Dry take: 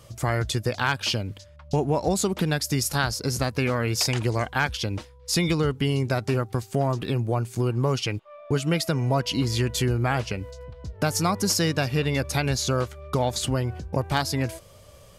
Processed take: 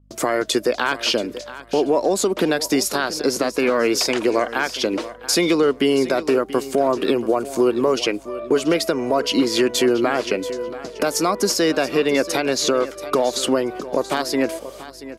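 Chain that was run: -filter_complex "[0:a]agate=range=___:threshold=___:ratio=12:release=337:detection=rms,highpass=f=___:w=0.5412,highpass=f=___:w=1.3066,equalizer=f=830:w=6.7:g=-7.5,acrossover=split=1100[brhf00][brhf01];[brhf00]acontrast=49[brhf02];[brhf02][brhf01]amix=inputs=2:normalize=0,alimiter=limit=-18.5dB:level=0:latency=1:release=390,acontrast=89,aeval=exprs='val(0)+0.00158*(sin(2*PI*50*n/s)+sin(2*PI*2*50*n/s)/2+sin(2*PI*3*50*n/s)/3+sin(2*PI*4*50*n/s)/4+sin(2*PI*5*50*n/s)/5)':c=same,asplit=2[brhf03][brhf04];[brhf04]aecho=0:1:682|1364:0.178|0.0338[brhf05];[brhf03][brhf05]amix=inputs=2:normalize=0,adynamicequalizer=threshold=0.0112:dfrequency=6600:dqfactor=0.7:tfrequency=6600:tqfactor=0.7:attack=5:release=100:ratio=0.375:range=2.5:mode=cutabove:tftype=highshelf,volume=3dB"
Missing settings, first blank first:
-48dB, -38dB, 280, 280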